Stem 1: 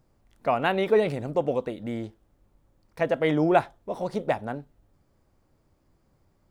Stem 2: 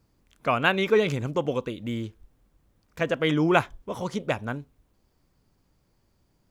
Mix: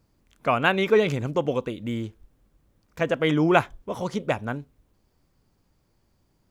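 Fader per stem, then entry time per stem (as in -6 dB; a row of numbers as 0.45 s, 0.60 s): -12.0 dB, 0.0 dB; 0.00 s, 0.00 s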